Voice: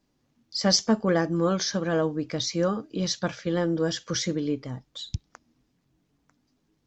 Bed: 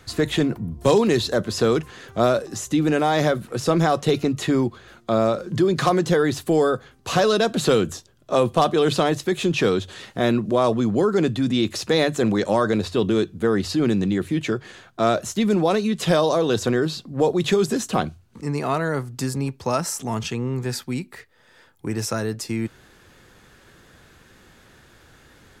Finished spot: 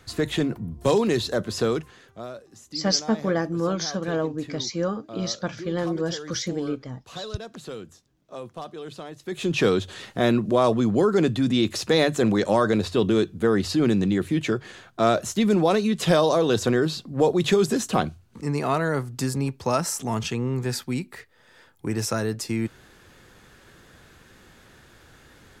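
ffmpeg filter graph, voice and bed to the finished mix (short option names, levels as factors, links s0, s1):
-filter_complex "[0:a]adelay=2200,volume=0.891[s0];[1:a]volume=5.31,afade=t=out:st=1.61:d=0.61:silence=0.177828,afade=t=in:st=9.19:d=0.44:silence=0.125893[s1];[s0][s1]amix=inputs=2:normalize=0"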